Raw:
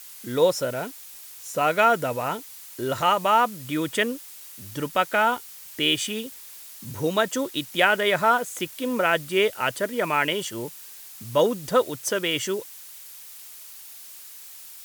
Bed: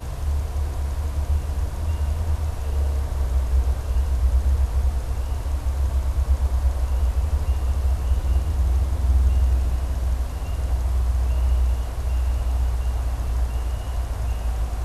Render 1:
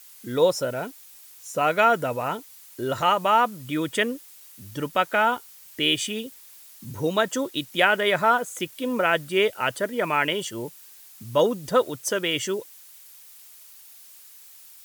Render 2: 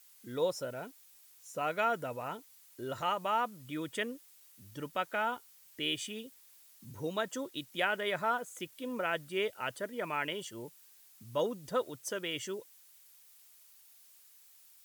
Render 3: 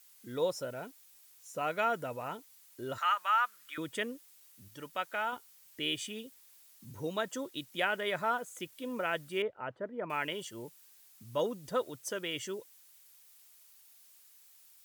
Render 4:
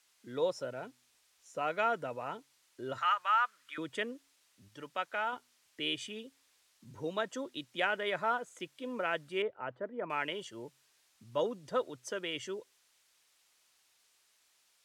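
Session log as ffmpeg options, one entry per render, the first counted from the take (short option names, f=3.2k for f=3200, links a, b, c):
-af "afftdn=nr=6:nf=-43"
-af "volume=-12dB"
-filter_complex "[0:a]asettb=1/sr,asplit=3[a][b][c];[a]atrim=end=2.984[d];[b]atrim=start=2.98:end=3.78,asetpts=PTS-STARTPTS,afade=t=in:d=0.004:c=qsin,afade=t=out:st=0.796:d=0.004:c=qsin,highpass=f=1.4k:t=q:w=2.7[e];[c]atrim=start=3.776[f];[d][e]acrossfade=d=0.004:c1=hsin:c2=qsin[g];[g][f]acrossfade=d=0.004:c1=qsin:c2=hsin,asettb=1/sr,asplit=3[h][i][j];[h]atrim=end=4.684[k];[i]atrim=start=4.68:end=5.33,asetpts=PTS-STARTPTS,afade=t=in:d=0.004:c=qsin,afade=t=out:st=0.646:d=0.004:c=qsin,lowshelf=f=460:g=-8.5[l];[j]atrim=start=5.326[m];[k][l]acrossfade=d=0.004:c1=hsin:c2=qsin[n];[n][m]acrossfade=d=0.004:c1=qsin:c2=hsin,asettb=1/sr,asplit=3[o][p][q];[o]atrim=end=9.424[r];[p]atrim=start=9.42:end=10.1,asetpts=PTS-STARTPTS,afade=t=in:d=0.004:c=qsin,afade=t=out:st=0.676:d=0.004:c=qsin,lowpass=1.2k[s];[q]atrim=start=10.096[t];[r][s]acrossfade=d=0.004:c1=hsin:c2=qsin[u];[u][t]acrossfade=d=0.004:c1=qsin:c2=hsin"
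-filter_complex "[0:a]acrossover=split=240[a][b];[a]flanger=delay=7:depth=1.2:regen=90:speed=0.45:shape=triangular[c];[b]adynamicsmooth=sensitivity=1.5:basefreq=6.8k[d];[c][d]amix=inputs=2:normalize=0"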